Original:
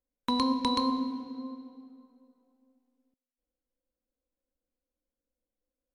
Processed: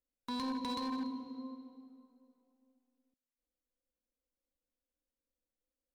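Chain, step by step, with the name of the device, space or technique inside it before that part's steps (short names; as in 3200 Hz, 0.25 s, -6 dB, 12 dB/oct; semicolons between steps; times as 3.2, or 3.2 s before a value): limiter into clipper (limiter -22.5 dBFS, peak gain reduction 7 dB; hard clip -27.5 dBFS, distortion -16 dB); gain -5.5 dB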